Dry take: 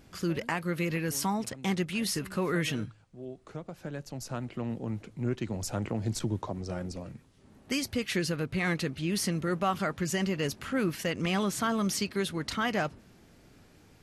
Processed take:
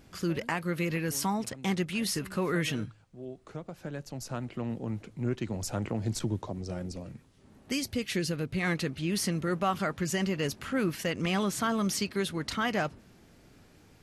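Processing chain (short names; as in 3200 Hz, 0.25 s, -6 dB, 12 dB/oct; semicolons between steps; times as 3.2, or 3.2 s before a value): 6.34–8.63 dynamic EQ 1200 Hz, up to -5 dB, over -49 dBFS, Q 0.8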